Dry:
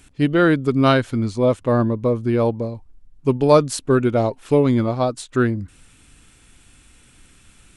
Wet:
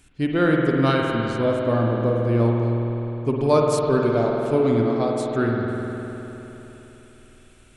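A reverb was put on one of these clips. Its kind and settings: spring tank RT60 3.6 s, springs 51 ms, chirp 50 ms, DRR -1 dB; gain -5.5 dB

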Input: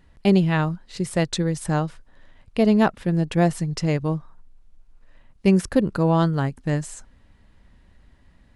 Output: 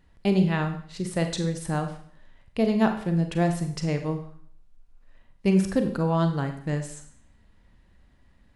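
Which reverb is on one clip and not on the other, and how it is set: Schroeder reverb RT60 0.57 s, combs from 32 ms, DRR 6 dB; gain -5 dB

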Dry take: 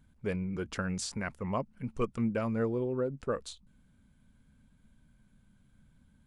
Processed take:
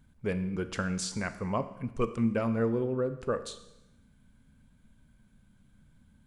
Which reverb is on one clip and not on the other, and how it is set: Schroeder reverb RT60 0.9 s, combs from 27 ms, DRR 11 dB; gain +2 dB

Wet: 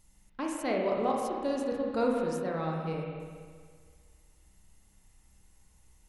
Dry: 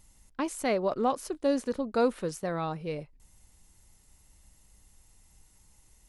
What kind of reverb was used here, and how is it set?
spring tank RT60 1.8 s, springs 31/47 ms, chirp 65 ms, DRR -1.5 dB; gain -5 dB

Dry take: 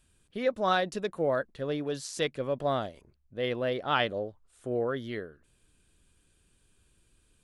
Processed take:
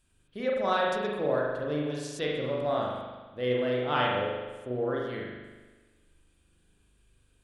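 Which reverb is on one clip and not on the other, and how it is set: spring tank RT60 1.3 s, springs 40 ms, chirp 35 ms, DRR -3 dB; gain -4 dB

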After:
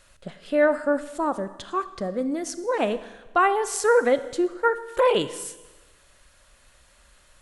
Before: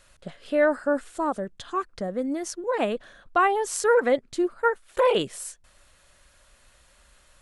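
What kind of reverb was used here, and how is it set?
Schroeder reverb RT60 1.2 s, combs from 27 ms, DRR 13 dB; gain +1 dB

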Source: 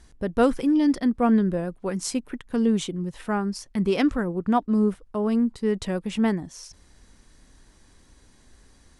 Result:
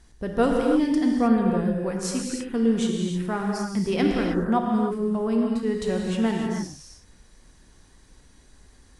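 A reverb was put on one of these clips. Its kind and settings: non-linear reverb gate 0.34 s flat, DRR -0.5 dB; gain -2.5 dB

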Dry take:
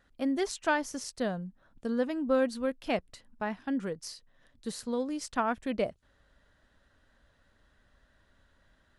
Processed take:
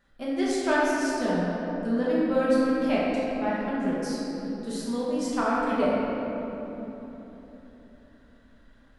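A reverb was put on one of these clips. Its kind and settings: shoebox room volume 220 m³, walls hard, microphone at 1.2 m; gain -2.5 dB

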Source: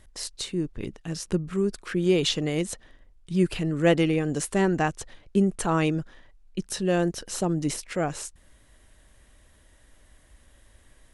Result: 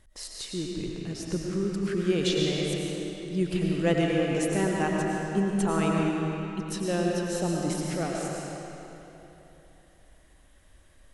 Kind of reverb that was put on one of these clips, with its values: digital reverb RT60 3.3 s, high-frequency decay 0.8×, pre-delay 65 ms, DRR -2 dB; gain -5.5 dB

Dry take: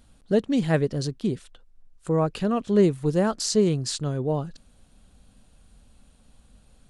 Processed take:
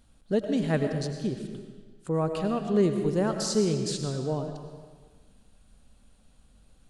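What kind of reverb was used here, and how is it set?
digital reverb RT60 1.5 s, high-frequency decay 0.9×, pre-delay 60 ms, DRR 5.5 dB; gain -4.5 dB

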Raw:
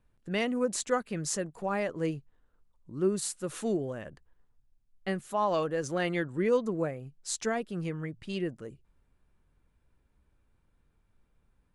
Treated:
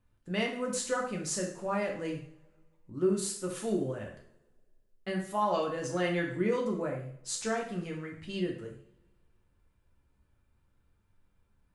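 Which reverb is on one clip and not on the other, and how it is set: two-slope reverb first 0.52 s, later 1.9 s, from -27 dB, DRR -1 dB; gain -4 dB

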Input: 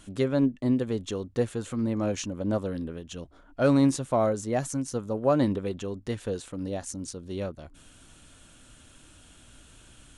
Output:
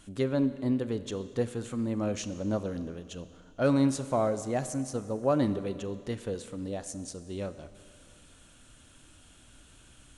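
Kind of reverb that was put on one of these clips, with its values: Schroeder reverb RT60 2.2 s, combs from 30 ms, DRR 12.5 dB; gain -3 dB

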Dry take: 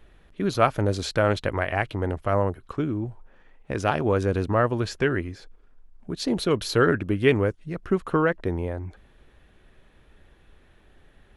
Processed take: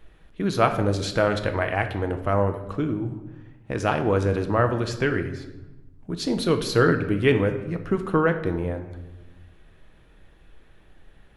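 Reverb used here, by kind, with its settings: shoebox room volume 450 m³, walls mixed, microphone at 0.6 m

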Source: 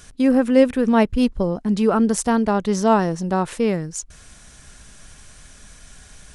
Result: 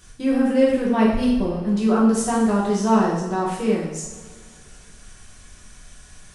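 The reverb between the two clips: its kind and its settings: two-slope reverb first 0.76 s, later 2.7 s, from -18 dB, DRR -6 dB; gain -8.5 dB

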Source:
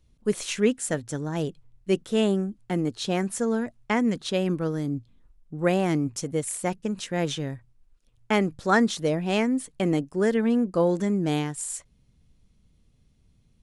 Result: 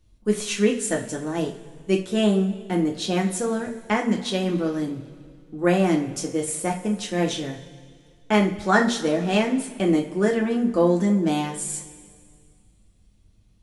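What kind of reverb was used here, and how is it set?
two-slope reverb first 0.32 s, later 2.1 s, from -18 dB, DRR 0 dB

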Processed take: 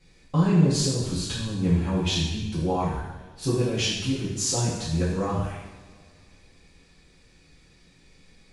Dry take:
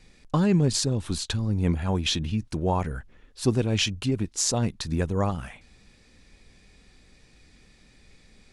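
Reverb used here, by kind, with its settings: two-slope reverb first 0.98 s, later 2.8 s, from -19 dB, DRR -9 dB; gain -9.5 dB

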